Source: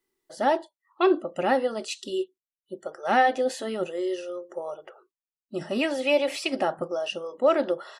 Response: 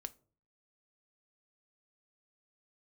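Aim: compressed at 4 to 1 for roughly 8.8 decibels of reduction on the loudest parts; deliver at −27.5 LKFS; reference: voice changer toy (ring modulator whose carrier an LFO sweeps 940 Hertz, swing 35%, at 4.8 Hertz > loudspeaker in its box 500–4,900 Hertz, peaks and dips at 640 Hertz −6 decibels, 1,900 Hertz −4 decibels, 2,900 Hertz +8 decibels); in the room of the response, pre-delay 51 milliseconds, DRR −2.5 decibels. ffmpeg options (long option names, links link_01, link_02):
-filter_complex "[0:a]acompressor=threshold=-26dB:ratio=4,asplit=2[link_01][link_02];[1:a]atrim=start_sample=2205,adelay=51[link_03];[link_02][link_03]afir=irnorm=-1:irlink=0,volume=6.5dB[link_04];[link_01][link_04]amix=inputs=2:normalize=0,aeval=exprs='val(0)*sin(2*PI*940*n/s+940*0.35/4.8*sin(2*PI*4.8*n/s))':channel_layout=same,highpass=500,equalizer=frequency=640:width_type=q:width=4:gain=-6,equalizer=frequency=1900:width_type=q:width=4:gain=-4,equalizer=frequency=2900:width_type=q:width=4:gain=8,lowpass=frequency=4900:width=0.5412,lowpass=frequency=4900:width=1.3066,volume=3.5dB"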